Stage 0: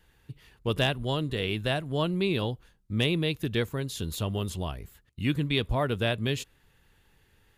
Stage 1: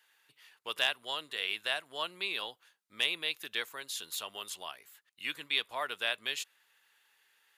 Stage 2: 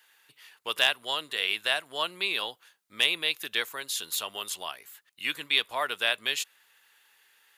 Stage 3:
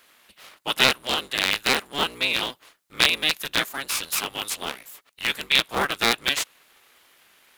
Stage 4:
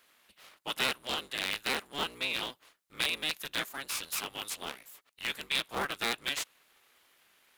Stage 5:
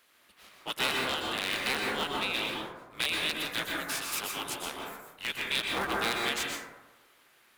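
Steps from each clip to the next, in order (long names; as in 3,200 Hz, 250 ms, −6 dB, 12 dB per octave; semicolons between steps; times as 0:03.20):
high-pass filter 1,100 Hz 12 dB per octave
high-shelf EQ 9,800 Hz +4 dB; level +6 dB
sub-harmonics by changed cycles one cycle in 3, inverted; level +5.5 dB
soft clipping −12 dBFS, distortion −12 dB; level −8.5 dB
dense smooth reverb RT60 1.1 s, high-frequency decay 0.3×, pre-delay 110 ms, DRR −1.5 dB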